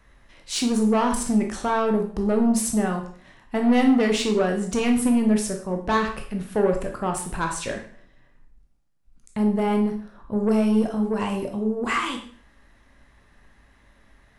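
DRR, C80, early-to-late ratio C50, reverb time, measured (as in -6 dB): 2.5 dB, 11.5 dB, 7.5 dB, 0.50 s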